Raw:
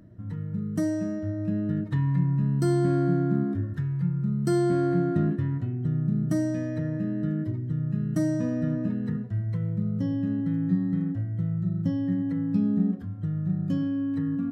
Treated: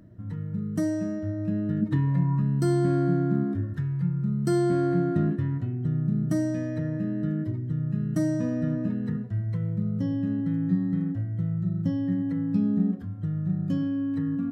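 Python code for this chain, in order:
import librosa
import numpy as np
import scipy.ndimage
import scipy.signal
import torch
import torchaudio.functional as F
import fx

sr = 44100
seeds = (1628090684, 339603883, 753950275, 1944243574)

y = fx.peak_eq(x, sr, hz=fx.line((1.81, 210.0), (2.4, 1200.0)), db=12.0, octaves=0.56, at=(1.81, 2.4), fade=0.02)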